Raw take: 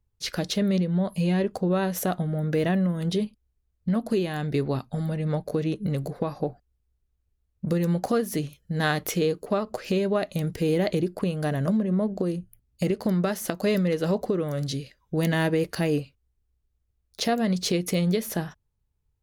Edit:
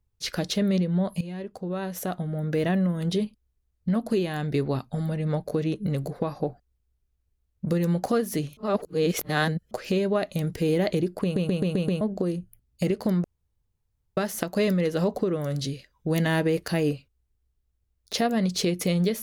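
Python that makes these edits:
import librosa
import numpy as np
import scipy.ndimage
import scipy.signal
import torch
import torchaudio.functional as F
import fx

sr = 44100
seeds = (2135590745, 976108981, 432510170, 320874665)

y = fx.edit(x, sr, fx.fade_in_from(start_s=1.21, length_s=1.6, floor_db=-14.5),
    fx.reverse_span(start_s=8.57, length_s=1.14),
    fx.stutter_over(start_s=11.23, slice_s=0.13, count=6),
    fx.insert_room_tone(at_s=13.24, length_s=0.93), tone=tone)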